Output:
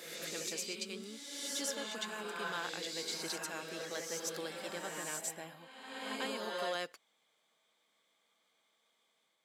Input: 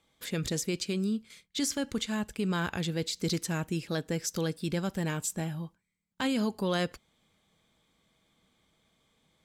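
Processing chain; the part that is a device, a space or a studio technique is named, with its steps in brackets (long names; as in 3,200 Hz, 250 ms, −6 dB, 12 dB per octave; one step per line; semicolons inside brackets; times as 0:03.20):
ghost voice (reversed playback; convolution reverb RT60 1.5 s, pre-delay 90 ms, DRR −1 dB; reversed playback; high-pass filter 510 Hz 12 dB per octave)
level −6.5 dB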